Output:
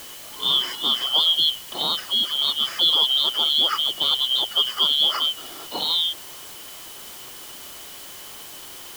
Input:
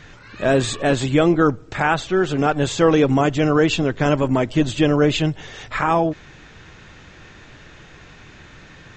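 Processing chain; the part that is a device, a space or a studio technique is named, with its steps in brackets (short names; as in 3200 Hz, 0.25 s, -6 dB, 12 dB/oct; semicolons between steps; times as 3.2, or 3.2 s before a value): split-band scrambled radio (four-band scrambler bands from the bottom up 2413; BPF 390–3000 Hz; white noise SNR 16 dB)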